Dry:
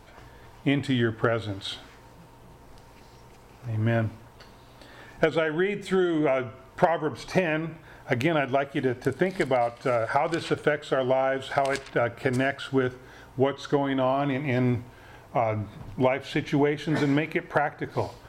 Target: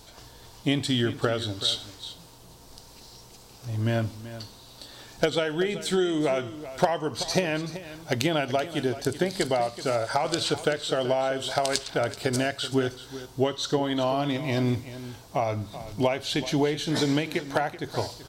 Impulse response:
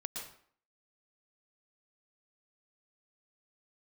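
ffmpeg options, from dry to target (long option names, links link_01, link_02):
-af "highshelf=frequency=3000:width_type=q:width=1.5:gain=11,aecho=1:1:381:0.2,volume=-1dB"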